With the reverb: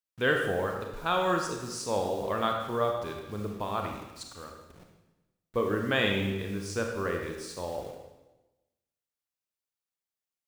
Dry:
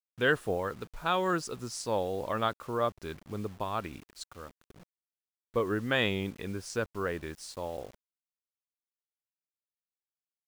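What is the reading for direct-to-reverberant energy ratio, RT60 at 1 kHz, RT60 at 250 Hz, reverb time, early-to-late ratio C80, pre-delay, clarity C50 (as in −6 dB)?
2.0 dB, 1.0 s, 1.2 s, 1.0 s, 6.0 dB, 29 ms, 3.5 dB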